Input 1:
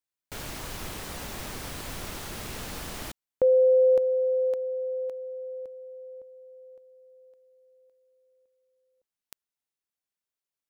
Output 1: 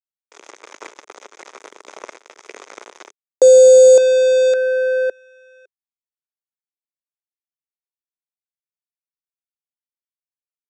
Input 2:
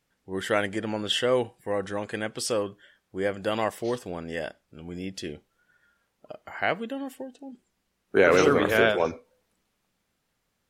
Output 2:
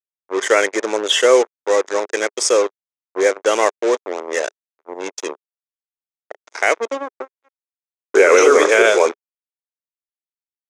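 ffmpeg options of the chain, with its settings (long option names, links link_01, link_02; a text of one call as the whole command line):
ffmpeg -i in.wav -af "afftdn=noise_reduction=29:noise_floor=-40,equalizer=frequency=2500:width_type=o:width=0.93:gain=6,acrusher=bits=4:mix=0:aa=0.5,highpass=frequency=380:width=0.5412,highpass=frequency=380:width=1.3066,equalizer=frequency=410:width_type=q:width=4:gain=4,equalizer=frequency=740:width_type=q:width=4:gain=-4,equalizer=frequency=1700:width_type=q:width=4:gain=-4,equalizer=frequency=2900:width_type=q:width=4:gain=-9,equalizer=frequency=4300:width_type=q:width=4:gain=-9,equalizer=frequency=6500:width_type=q:width=4:gain=8,lowpass=frequency=8800:width=0.5412,lowpass=frequency=8800:width=1.3066,alimiter=level_in=13dB:limit=-1dB:release=50:level=0:latency=1,volume=-1dB" out.wav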